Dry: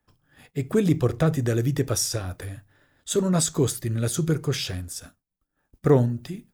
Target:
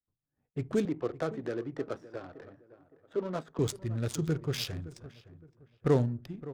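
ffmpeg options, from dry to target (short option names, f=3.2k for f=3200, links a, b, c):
-filter_complex "[0:a]agate=range=-17dB:threshold=-47dB:ratio=16:detection=peak,asettb=1/sr,asplit=3[a][b][c];[a]atrim=end=0.854[d];[b]atrim=start=0.85:end=3.59,asetpts=PTS-STARTPTS,afade=t=in:d=0.004:c=qsin,afade=t=out:st=2.736:d=0.004:c=qsin,acrossover=split=250 2400:gain=0.112 1 0.112[e][f][g];[e][f][g]amix=inputs=3:normalize=0[h];[c]atrim=start=3.586[i];[d][h]acrossfade=d=0.004:c1=hsin:c2=qsin[j];[j][i]acrossfade=d=0.004:c1=qsin:c2=hsin,adynamicsmooth=sensitivity=5:basefreq=850,asplit=2[k][l];[l]adelay=565,lowpass=f=2k:p=1,volume=-16.5dB,asplit=2[m][n];[n]adelay=565,lowpass=f=2k:p=1,volume=0.33,asplit=2[o][p];[p]adelay=565,lowpass=f=2k:p=1,volume=0.33[q];[k][m][o][q]amix=inputs=4:normalize=0,adynamicequalizer=threshold=0.00355:dfrequency=3400:dqfactor=0.7:tfrequency=3400:tqfactor=0.7:attack=5:release=100:ratio=0.375:range=3.5:mode=boostabove:tftype=highshelf,volume=-7dB"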